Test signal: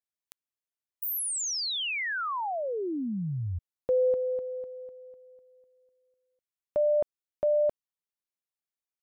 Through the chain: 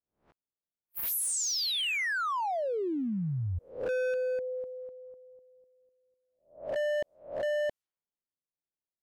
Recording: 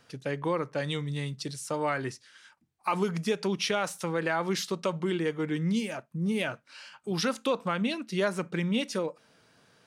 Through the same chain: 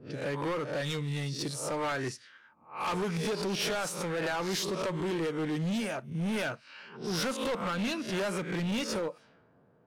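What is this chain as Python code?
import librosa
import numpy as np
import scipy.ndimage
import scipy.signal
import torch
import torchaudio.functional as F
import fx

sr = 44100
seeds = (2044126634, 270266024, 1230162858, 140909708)

y = fx.spec_swells(x, sr, rise_s=0.44)
y = np.clip(10.0 ** (28.5 / 20.0) * y, -1.0, 1.0) / 10.0 ** (28.5 / 20.0)
y = fx.env_lowpass(y, sr, base_hz=570.0, full_db=-34.5)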